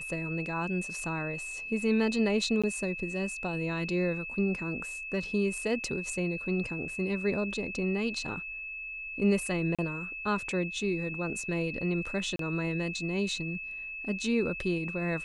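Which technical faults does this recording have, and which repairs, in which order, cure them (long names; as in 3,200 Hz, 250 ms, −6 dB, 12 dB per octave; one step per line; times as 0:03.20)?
whistle 2,600 Hz −37 dBFS
0:02.62–0:02.64: drop-out 16 ms
0:05.84: drop-out 2.6 ms
0:09.75–0:09.79: drop-out 36 ms
0:12.36–0:12.39: drop-out 33 ms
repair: notch filter 2,600 Hz, Q 30
repair the gap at 0:02.62, 16 ms
repair the gap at 0:05.84, 2.6 ms
repair the gap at 0:09.75, 36 ms
repair the gap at 0:12.36, 33 ms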